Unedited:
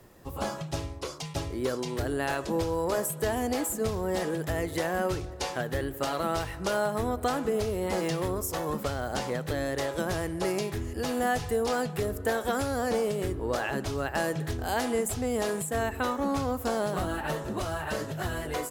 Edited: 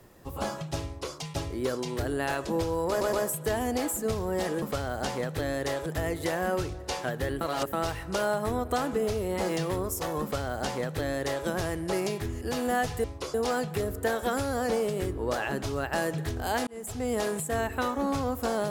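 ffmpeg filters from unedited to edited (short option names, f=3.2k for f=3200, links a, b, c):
-filter_complex "[0:a]asplit=10[a][b][c][d][e][f][g][h][i][j];[a]atrim=end=3.012[k];[b]atrim=start=2.888:end=3.012[l];[c]atrim=start=2.888:end=4.382[m];[d]atrim=start=8.738:end=9.982[n];[e]atrim=start=4.378:end=5.932[o];[f]atrim=start=5.928:end=6.252,asetpts=PTS-STARTPTS,areverse[p];[g]atrim=start=6.248:end=11.562[q];[h]atrim=start=0.848:end=1.152[r];[i]atrim=start=11.558:end=14.89,asetpts=PTS-STARTPTS,afade=t=out:st=3.328:d=0.004:c=hsin[s];[j]atrim=start=14.89,asetpts=PTS-STARTPTS,afade=t=in:d=0.42[t];[k][l]acrossfade=d=0.004:c1=hsin:c2=hsin[u];[u][m]acrossfade=d=0.004:c1=hsin:c2=hsin[v];[v][n]acrossfade=d=0.004:c1=hsin:c2=hsin[w];[w][o]acrossfade=d=0.004:c1=hsin:c2=hsin[x];[x][p]acrossfade=d=0.004:c1=hsin:c2=hsin[y];[y][q]acrossfade=d=0.004:c1=hsin:c2=hsin[z];[z][r]acrossfade=d=0.004:c1=hsin:c2=hsin[aa];[s][t]concat=n=2:v=0:a=1[ab];[aa][ab]acrossfade=d=0.004:c1=hsin:c2=hsin"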